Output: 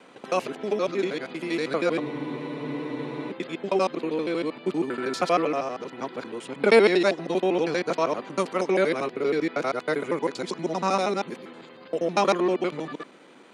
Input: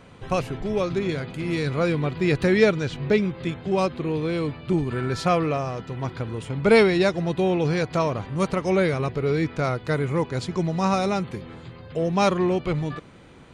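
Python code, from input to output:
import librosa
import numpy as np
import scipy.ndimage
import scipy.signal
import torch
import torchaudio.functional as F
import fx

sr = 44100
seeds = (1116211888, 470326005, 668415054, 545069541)

y = fx.local_reverse(x, sr, ms=79.0)
y = scipy.signal.sosfilt(scipy.signal.butter(4, 240.0, 'highpass', fs=sr, output='sos'), y)
y = fx.spec_freeze(y, sr, seeds[0], at_s=2.03, hold_s=1.29)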